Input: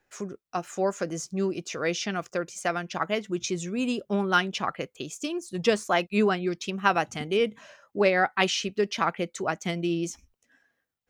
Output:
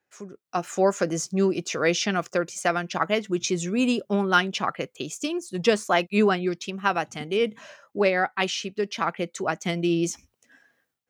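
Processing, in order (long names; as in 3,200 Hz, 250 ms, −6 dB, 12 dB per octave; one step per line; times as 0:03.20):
high-pass filter 98 Hz
automatic gain control gain up to 14.5 dB
level −6.5 dB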